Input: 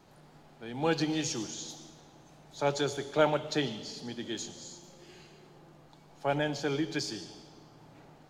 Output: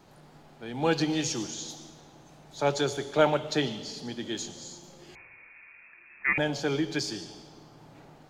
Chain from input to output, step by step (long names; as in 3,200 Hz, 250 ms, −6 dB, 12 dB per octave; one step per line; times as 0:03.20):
0:05.15–0:06.38: voice inversion scrambler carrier 2,600 Hz
level +3 dB